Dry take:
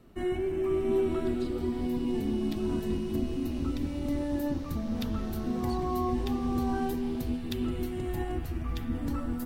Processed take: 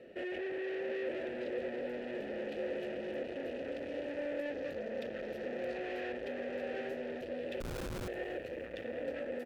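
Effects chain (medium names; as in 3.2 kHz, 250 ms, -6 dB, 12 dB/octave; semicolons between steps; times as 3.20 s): in parallel at +2.5 dB: peak limiter -29 dBFS, peak gain reduction 11 dB; on the sum: overload inside the chain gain 34.5 dB; vowel filter e; 7.60–8.08 s: Schmitt trigger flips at -48 dBFS; frequency-shifting echo 288 ms, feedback 63%, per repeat -83 Hz, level -23.5 dB; trim +11 dB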